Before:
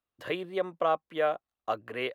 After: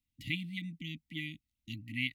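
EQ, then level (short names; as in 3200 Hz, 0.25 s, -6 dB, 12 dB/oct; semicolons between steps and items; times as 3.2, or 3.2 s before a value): brick-wall FIR band-stop 310–1900 Hz; low shelf 180 Hz +11 dB; +1.5 dB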